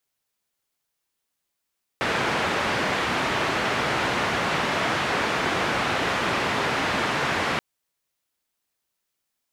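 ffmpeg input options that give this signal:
ffmpeg -f lavfi -i "anoisesrc=color=white:duration=5.58:sample_rate=44100:seed=1,highpass=frequency=91,lowpass=frequency=1900,volume=-9.3dB" out.wav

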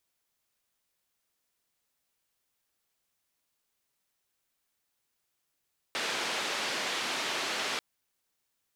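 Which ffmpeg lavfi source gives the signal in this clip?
ffmpeg -f lavfi -i "anoisesrc=color=white:duration=1.84:sample_rate=44100:seed=1,highpass=frequency=270,lowpass=frequency=3900,volume=-20.7dB" out.wav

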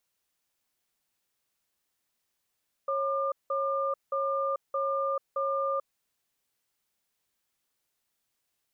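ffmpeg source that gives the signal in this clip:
ffmpeg -f lavfi -i "aevalsrc='0.0355*(sin(2*PI*548*t)+sin(2*PI*1200*t))*clip(min(mod(t,0.62),0.44-mod(t,0.62))/0.005,0,1)':duration=2.94:sample_rate=44100" out.wav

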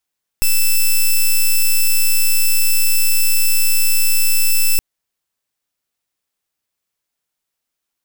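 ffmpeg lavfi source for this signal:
ffmpeg -f lavfi -i "aevalsrc='0.251*(2*lt(mod(2640*t,1),0.06)-1)':duration=4.37:sample_rate=44100" out.wav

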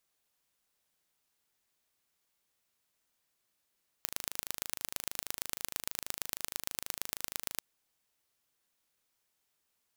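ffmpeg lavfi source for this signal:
ffmpeg -f lavfi -i "aevalsrc='0.531*eq(mod(n,1677),0)*(0.5+0.5*eq(mod(n,5031),0))':duration=3.54:sample_rate=44100" out.wav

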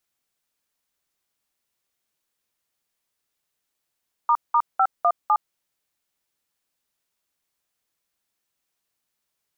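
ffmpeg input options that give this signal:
ffmpeg -f lavfi -i "aevalsrc='0.133*clip(min(mod(t,0.252),0.062-mod(t,0.252))/0.002,0,1)*(eq(floor(t/0.252),0)*(sin(2*PI*941*mod(t,0.252))+sin(2*PI*1209*mod(t,0.252)))+eq(floor(t/0.252),1)*(sin(2*PI*941*mod(t,0.252))+sin(2*PI*1209*mod(t,0.252)))+eq(floor(t/0.252),2)*(sin(2*PI*770*mod(t,0.252))+sin(2*PI*1336*mod(t,0.252)))+eq(floor(t/0.252),3)*(sin(2*PI*697*mod(t,0.252))+sin(2*PI*1209*mod(t,0.252)))+eq(floor(t/0.252),4)*(sin(2*PI*852*mod(t,0.252))+sin(2*PI*1209*mod(t,0.252))))':duration=1.26:sample_rate=44100" out.wav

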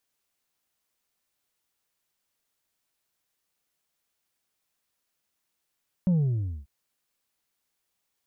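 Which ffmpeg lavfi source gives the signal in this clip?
ffmpeg -f lavfi -i "aevalsrc='0.112*clip((0.59-t)/0.59,0,1)*tanh(1.41*sin(2*PI*190*0.59/log(65/190)*(exp(log(65/190)*t/0.59)-1)))/tanh(1.41)':duration=0.59:sample_rate=44100" out.wav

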